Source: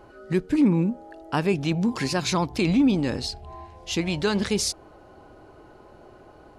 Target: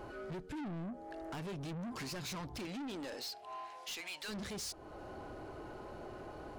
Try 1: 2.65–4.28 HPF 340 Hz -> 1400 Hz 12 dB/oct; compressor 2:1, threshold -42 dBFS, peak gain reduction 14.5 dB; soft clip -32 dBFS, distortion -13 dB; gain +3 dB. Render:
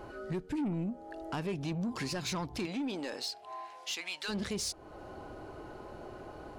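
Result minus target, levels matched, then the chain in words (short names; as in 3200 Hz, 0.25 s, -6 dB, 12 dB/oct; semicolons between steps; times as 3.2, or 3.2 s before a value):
soft clip: distortion -9 dB
2.65–4.28 HPF 340 Hz -> 1400 Hz 12 dB/oct; compressor 2:1, threshold -42 dBFS, peak gain reduction 14.5 dB; soft clip -43 dBFS, distortion -5 dB; gain +3 dB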